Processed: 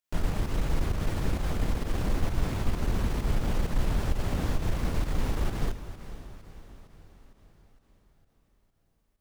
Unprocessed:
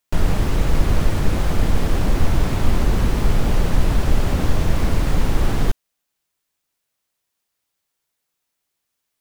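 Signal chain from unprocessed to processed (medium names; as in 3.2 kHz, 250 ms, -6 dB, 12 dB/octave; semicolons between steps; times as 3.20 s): single-diode clipper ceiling -6 dBFS; on a send: echo that smears into a reverb 465 ms, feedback 54%, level -13 dB; on the sum: volume shaper 131 bpm, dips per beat 1, -8 dB, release 109 ms; trim -8.5 dB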